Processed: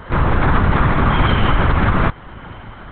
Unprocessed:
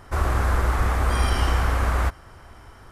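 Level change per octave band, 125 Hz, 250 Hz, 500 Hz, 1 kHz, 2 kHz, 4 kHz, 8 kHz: +7.0 dB, +14.0 dB, +8.0 dB, +8.5 dB, +8.5 dB, +6.5 dB, below −35 dB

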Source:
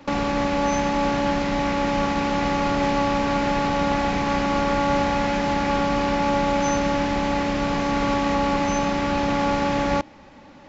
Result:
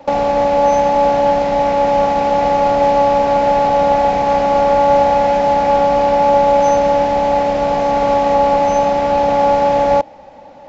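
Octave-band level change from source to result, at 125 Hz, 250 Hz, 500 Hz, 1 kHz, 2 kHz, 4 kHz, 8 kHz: 0.0 dB, 0.0 dB, +12.0 dB, +11.0 dB, 0.0 dB, 0.0 dB, can't be measured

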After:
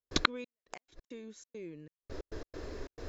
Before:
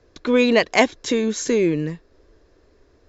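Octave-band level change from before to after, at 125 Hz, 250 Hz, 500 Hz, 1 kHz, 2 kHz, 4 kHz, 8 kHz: −16.0 dB, −23.0 dB, −24.5 dB, −13.5 dB, −14.5 dB, −9.5 dB, can't be measured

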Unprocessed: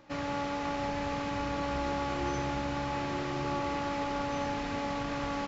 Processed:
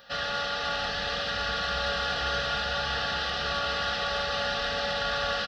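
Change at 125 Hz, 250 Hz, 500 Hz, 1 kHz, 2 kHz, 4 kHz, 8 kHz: −2.0 dB, −10.0 dB, +2.0 dB, +2.5 dB, +10.0 dB, +15.0 dB, can't be measured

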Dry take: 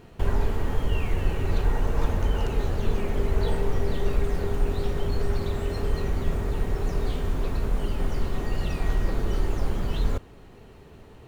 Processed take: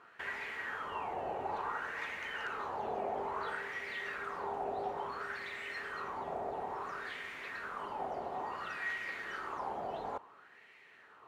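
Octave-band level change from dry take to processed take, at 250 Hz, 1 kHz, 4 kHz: −18.5, +0.5, −9.0 decibels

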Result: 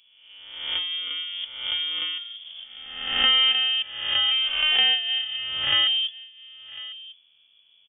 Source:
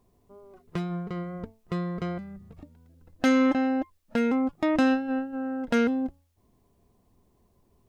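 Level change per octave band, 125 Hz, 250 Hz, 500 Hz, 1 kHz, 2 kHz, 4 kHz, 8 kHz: below −15 dB, below −25 dB, −17.0 dB, −3.5 dB, +6.5 dB, +27.0 dB, can't be measured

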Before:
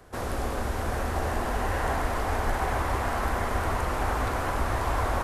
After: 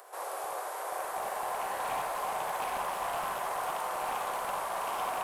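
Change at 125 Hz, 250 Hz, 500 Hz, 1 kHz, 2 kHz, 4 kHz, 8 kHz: −28.0, −18.0, −6.0, −2.5, −7.0, −3.5, −1.0 decibels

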